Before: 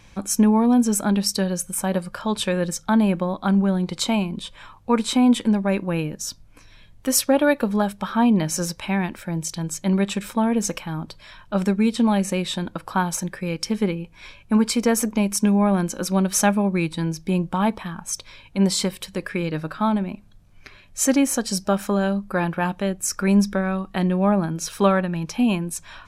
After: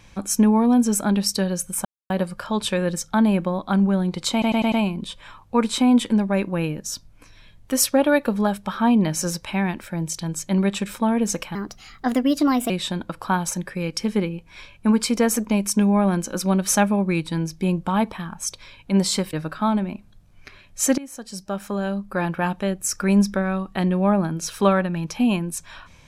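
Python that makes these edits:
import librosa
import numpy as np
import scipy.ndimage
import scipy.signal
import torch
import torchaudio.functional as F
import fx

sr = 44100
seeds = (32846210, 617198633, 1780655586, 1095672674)

y = fx.edit(x, sr, fx.insert_silence(at_s=1.85, length_s=0.25),
    fx.stutter(start_s=4.07, slice_s=0.1, count=5),
    fx.speed_span(start_s=10.9, length_s=1.46, speed=1.27),
    fx.cut(start_s=18.99, length_s=0.53),
    fx.fade_in_from(start_s=21.17, length_s=1.44, floor_db=-21.0), tone=tone)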